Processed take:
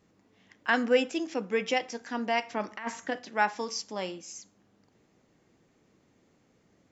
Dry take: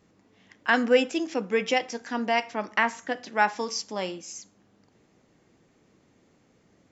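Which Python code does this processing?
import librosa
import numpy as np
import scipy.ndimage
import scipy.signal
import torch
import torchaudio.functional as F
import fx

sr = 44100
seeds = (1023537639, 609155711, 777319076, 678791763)

y = fx.over_compress(x, sr, threshold_db=-27.0, ratio=-0.5, at=(2.5, 3.19))
y = F.gain(torch.from_numpy(y), -3.5).numpy()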